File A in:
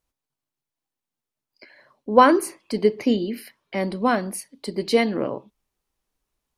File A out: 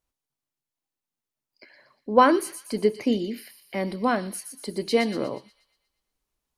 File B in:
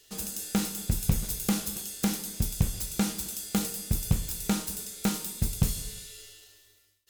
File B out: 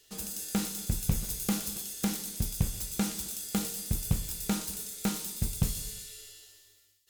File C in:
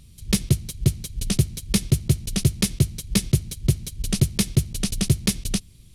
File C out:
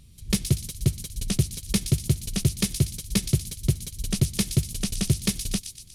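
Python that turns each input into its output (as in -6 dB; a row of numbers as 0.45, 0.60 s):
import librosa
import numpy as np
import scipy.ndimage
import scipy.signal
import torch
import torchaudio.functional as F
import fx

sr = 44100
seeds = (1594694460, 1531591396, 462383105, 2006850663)

y = fx.echo_wet_highpass(x, sr, ms=120, feedback_pct=50, hz=4100.0, wet_db=-5.0)
y = y * librosa.db_to_amplitude(-3.0)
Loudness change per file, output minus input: -3.0, -2.5, -2.5 LU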